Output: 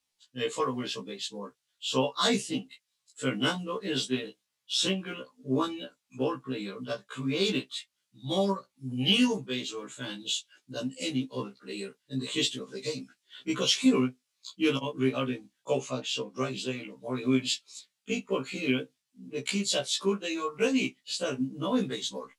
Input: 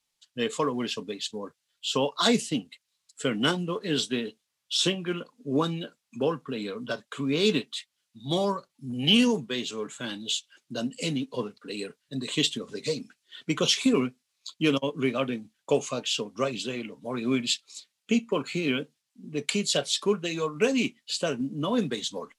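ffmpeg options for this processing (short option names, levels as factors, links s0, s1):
-filter_complex "[0:a]asettb=1/sr,asplit=3[s0][s1][s2];[s0]atrim=end=15.744[s3];[s1]atrim=start=15.74:end=16.36,asetpts=PTS-STARTPTS,afade=t=in:d=0.004:c=qsin,afade=t=out:st=0.616:d=0.004:c=qsin,highshelf=f=5800:g=-7[s4];[s2]atrim=start=16.356[s5];[s3][s4]acrossfade=d=0.004:c1=hsin:c2=qsin[s6];[s6][s5]acrossfade=d=0.004:c1=qsin:c2=hsin,afftfilt=real='re*1.73*eq(mod(b,3),0)':imag='im*1.73*eq(mod(b,3),0)':win_size=2048:overlap=0.75"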